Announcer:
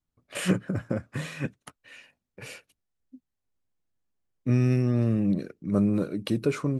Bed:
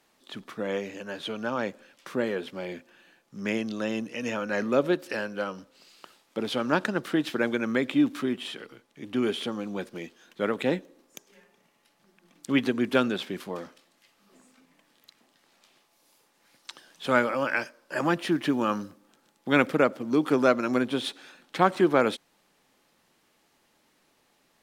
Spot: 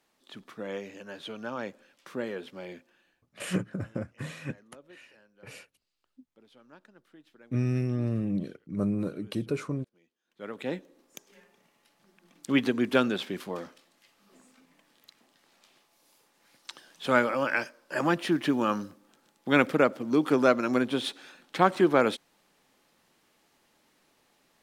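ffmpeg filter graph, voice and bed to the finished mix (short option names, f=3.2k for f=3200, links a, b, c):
-filter_complex "[0:a]adelay=3050,volume=-5dB[a];[1:a]volume=23dB,afade=t=out:st=2.71:d=0.71:silence=0.0668344,afade=t=in:st=10.24:d=1.01:silence=0.0354813[b];[a][b]amix=inputs=2:normalize=0"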